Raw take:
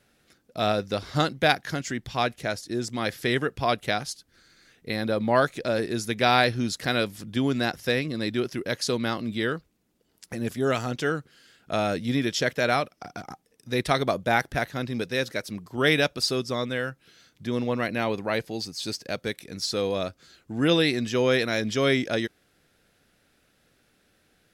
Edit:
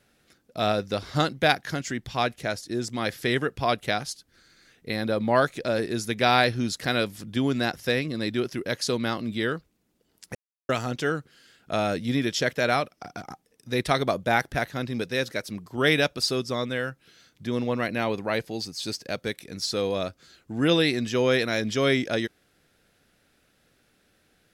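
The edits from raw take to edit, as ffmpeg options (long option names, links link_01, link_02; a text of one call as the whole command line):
ffmpeg -i in.wav -filter_complex "[0:a]asplit=3[link_01][link_02][link_03];[link_01]atrim=end=10.35,asetpts=PTS-STARTPTS,afade=type=out:start_time=10.346:duration=0.004:curve=hsin[link_04];[link_02]atrim=start=10.35:end=10.69,asetpts=PTS-STARTPTS,volume=0[link_05];[link_03]atrim=start=10.69,asetpts=PTS-STARTPTS,afade=type=in:duration=0.004:curve=hsin[link_06];[link_04][link_05][link_06]concat=n=3:v=0:a=1" out.wav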